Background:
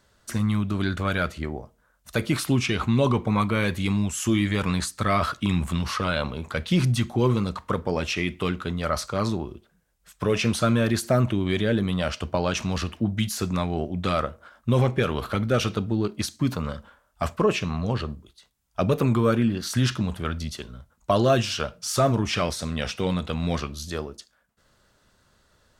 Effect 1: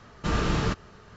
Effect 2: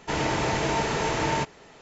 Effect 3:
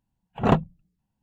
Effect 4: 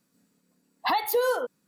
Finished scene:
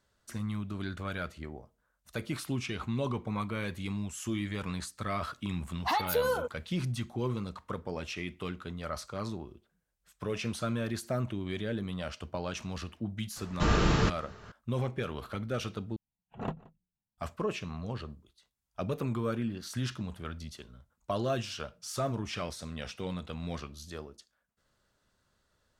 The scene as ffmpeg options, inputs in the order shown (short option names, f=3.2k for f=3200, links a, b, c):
-filter_complex "[0:a]volume=-11.5dB[a];[1:a]acontrast=57[b];[3:a]asplit=2[c][d];[d]adelay=174.9,volume=-22dB,highshelf=f=4k:g=-3.94[e];[c][e]amix=inputs=2:normalize=0[f];[a]asplit=2[g][h];[g]atrim=end=15.964[i];[f]atrim=end=1.22,asetpts=PTS-STARTPTS,volume=-17dB[j];[h]atrim=start=17.176[k];[4:a]atrim=end=1.67,asetpts=PTS-STARTPTS,volume=-4.5dB,afade=t=in:d=0.004:c=hsin,afade=t=out:st=1.666:d=0.004:c=hsin,adelay=220941S[l];[b]atrim=end=1.16,asetpts=PTS-STARTPTS,volume=-6dB,afade=t=in:d=0.004:c=hsin,afade=t=out:st=1.156:d=0.004:c=hsin,adelay=13360[m];[i][j]acrossfade=d=0.004:c1=hsin:c2=hsin[n];[n][k]acrossfade=d=0.004:c1=hsin:c2=hsin[o];[o][l][m]amix=inputs=3:normalize=0"